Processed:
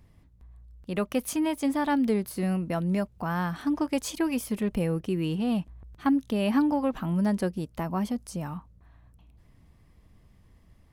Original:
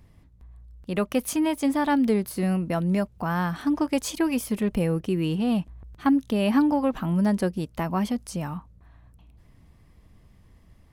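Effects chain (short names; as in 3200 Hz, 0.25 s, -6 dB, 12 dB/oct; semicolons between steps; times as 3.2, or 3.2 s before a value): 7.58–8.46 dynamic EQ 2600 Hz, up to -4 dB, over -47 dBFS, Q 0.74; gain -3 dB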